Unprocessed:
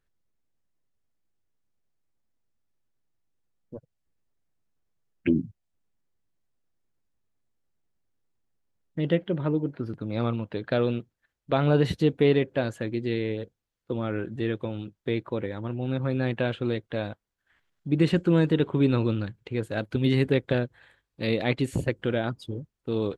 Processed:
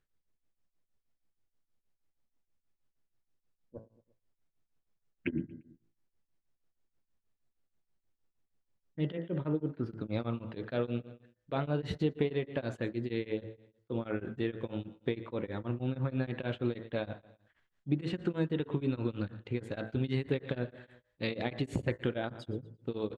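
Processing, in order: distance through air 56 m; feedback delay 116 ms, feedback 46%, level -20 dB; compression, threshold -25 dBFS, peak gain reduction 9.5 dB; de-hum 55.56 Hz, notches 37; tremolo of two beating tones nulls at 6.3 Hz

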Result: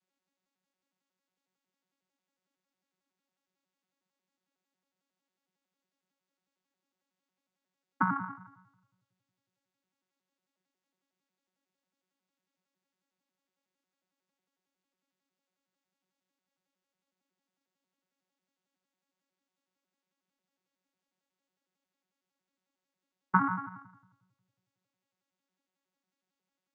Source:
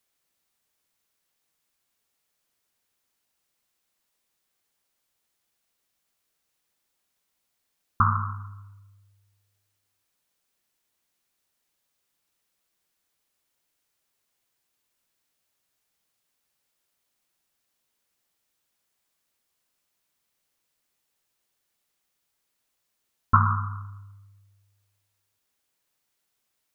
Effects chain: vocoder on a broken chord bare fifth, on F#3, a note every 91 ms; trim -5.5 dB

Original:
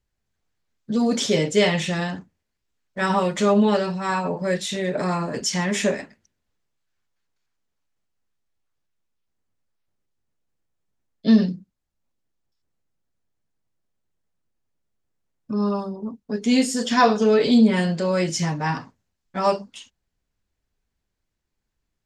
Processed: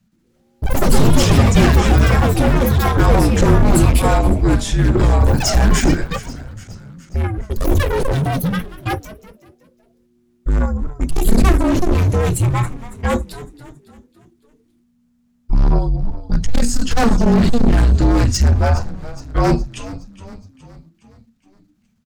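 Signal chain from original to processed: one-sided wavefolder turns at -17.5 dBFS; in parallel at +3 dB: level held to a coarse grid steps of 13 dB; on the sum: frequency shift -240 Hz; bass shelf 190 Hz +9.5 dB; saturation -12.5 dBFS, distortion -10 dB; dynamic bell 3.1 kHz, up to -6 dB, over -41 dBFS, Q 0.84; on a send: frequency-shifting echo 416 ms, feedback 52%, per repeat -68 Hz, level -16 dB; on the sum: ever faster or slower copies 119 ms, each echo +7 st, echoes 3; trim +4 dB

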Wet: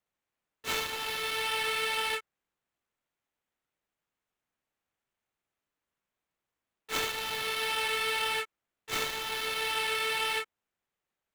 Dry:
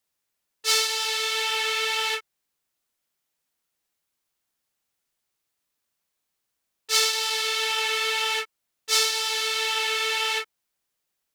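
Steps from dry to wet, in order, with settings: median filter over 9 samples; trim -2 dB

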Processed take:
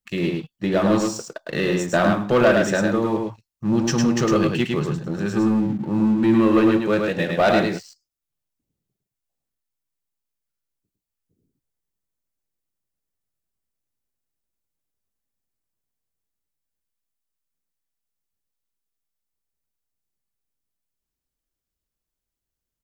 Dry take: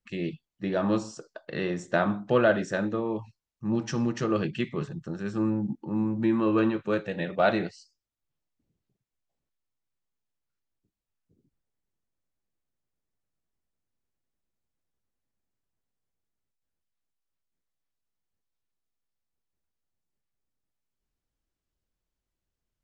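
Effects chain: treble shelf 6.5 kHz +10.5 dB; waveshaping leveller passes 2; delay 106 ms -3.5 dB

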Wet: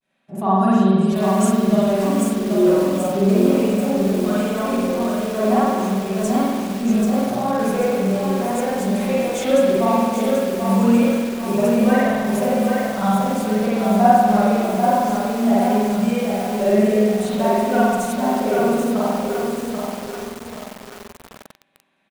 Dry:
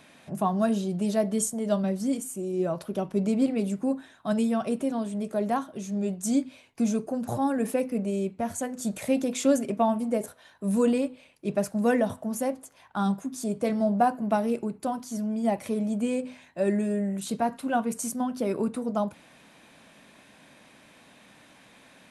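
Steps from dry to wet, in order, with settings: expander -41 dBFS; bass shelf 89 Hz -9.5 dB; comb 5.3 ms, depth 52%; vibrato 0.61 Hz 61 cents; spring tank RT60 1.6 s, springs 47 ms, chirp 25 ms, DRR -9 dB; bit-crushed delay 785 ms, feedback 55%, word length 5-bit, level -4 dB; trim -1.5 dB

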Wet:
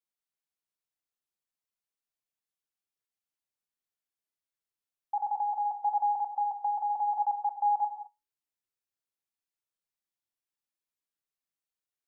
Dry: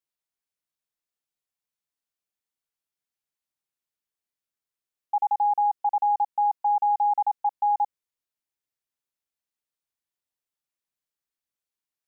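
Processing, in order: flange 0.2 Hz, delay 8.7 ms, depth 2.4 ms, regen +68%; gated-style reverb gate 240 ms flat, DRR 8 dB; trim -1 dB

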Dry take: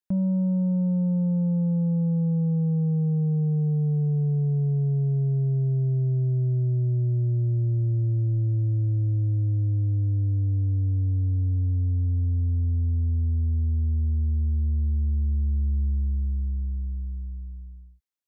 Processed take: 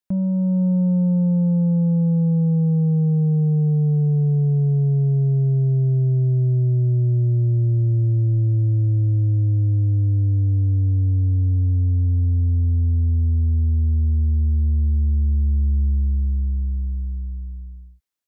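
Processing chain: level rider gain up to 3 dB; trim +2.5 dB

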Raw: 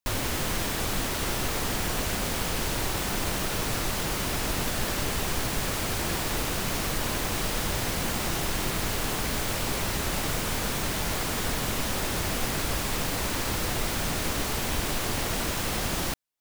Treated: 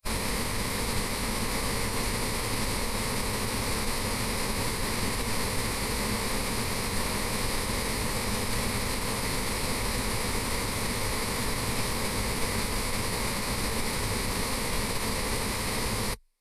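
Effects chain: formant-preserving pitch shift -8.5 st; rippled EQ curve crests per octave 0.92, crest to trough 8 dB

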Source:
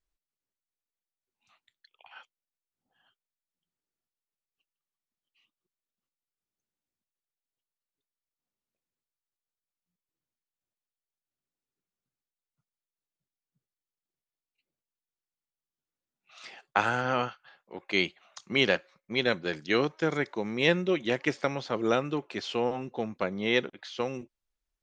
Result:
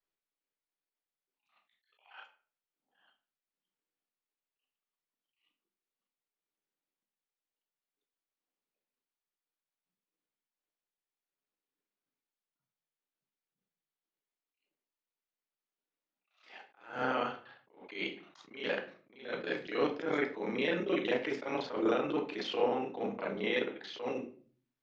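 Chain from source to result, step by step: time reversed locally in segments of 31 ms; peak limiter -19 dBFS, peak gain reduction 11 dB; three-band isolator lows -23 dB, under 210 Hz, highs -16 dB, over 4.5 kHz; simulated room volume 36 m³, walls mixed, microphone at 0.37 m; attacks held to a fixed rise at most 130 dB/s

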